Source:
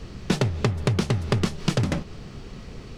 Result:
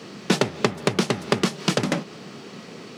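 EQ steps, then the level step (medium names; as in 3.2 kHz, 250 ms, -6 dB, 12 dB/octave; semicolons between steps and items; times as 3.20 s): high-pass 170 Hz 24 dB/octave; bass shelf 240 Hz -4 dB; +5.5 dB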